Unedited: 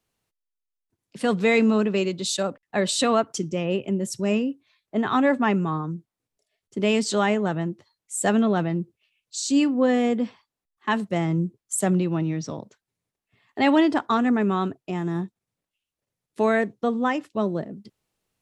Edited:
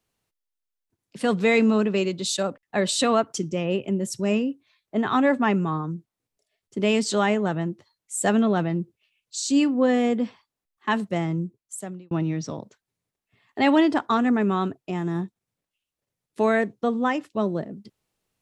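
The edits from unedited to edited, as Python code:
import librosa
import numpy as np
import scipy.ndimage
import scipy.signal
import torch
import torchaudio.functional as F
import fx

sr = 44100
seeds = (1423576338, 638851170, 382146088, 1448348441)

y = fx.edit(x, sr, fx.fade_out_span(start_s=11.04, length_s=1.07), tone=tone)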